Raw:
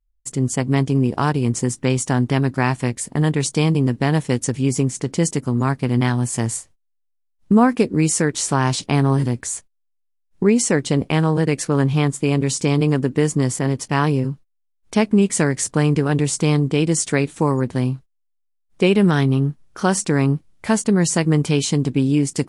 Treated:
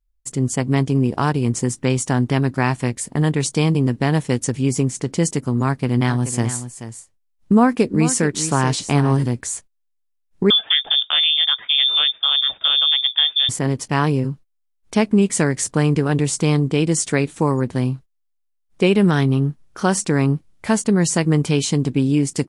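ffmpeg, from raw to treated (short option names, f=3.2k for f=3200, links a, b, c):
-filter_complex "[0:a]asplit=3[a][b][c];[a]afade=t=out:st=6.08:d=0.02[d];[b]aecho=1:1:430:0.266,afade=t=in:st=6.08:d=0.02,afade=t=out:st=9.15:d=0.02[e];[c]afade=t=in:st=9.15:d=0.02[f];[d][e][f]amix=inputs=3:normalize=0,asettb=1/sr,asplit=3[g][h][i];[g]atrim=end=10.504[j];[h]atrim=start=10.5:end=13.49,asetpts=PTS-STARTPTS,afade=t=in:d=0.004:c=qsin,afade=t=out:st=2.986:d=0.004:c=qsin,lowpass=f=3.1k:t=q:w=0.5098,lowpass=f=3.1k:t=q:w=0.6013,lowpass=f=3.1k:t=q:w=0.9,lowpass=f=3.1k:t=q:w=2.563,afreqshift=-3700[k];[i]atrim=start=13.486[l];[j][k]acrossfade=d=0.004:c1=hsin:c2=qsin[m];[m][l]acrossfade=d=0.004:c1=qsin:c2=hsin"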